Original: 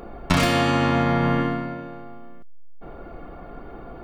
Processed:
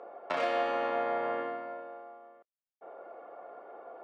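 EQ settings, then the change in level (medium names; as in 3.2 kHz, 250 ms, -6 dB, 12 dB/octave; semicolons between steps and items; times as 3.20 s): dynamic bell 1 kHz, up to -4 dB, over -34 dBFS, Q 1.3; ladder band-pass 650 Hz, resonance 45%; tilt EQ +3.5 dB/octave; +6.5 dB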